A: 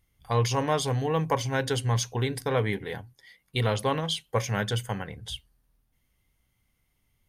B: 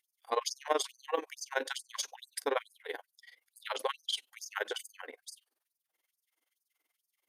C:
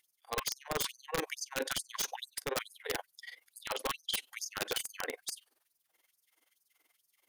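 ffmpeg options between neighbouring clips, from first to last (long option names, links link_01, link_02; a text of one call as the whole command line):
ffmpeg -i in.wav -af "tremolo=f=21:d=0.889,afftfilt=real='re*gte(b*sr/1024,250*pow(4700/250,0.5+0.5*sin(2*PI*2.3*pts/sr)))':imag='im*gte(b*sr/1024,250*pow(4700/250,0.5+0.5*sin(2*PI*2.3*pts/sr)))':win_size=1024:overlap=0.75" out.wav
ffmpeg -i in.wav -af "areverse,acompressor=threshold=-39dB:ratio=20,areverse,aeval=exprs='(mod(44.7*val(0)+1,2)-1)/44.7':channel_layout=same,volume=8.5dB" out.wav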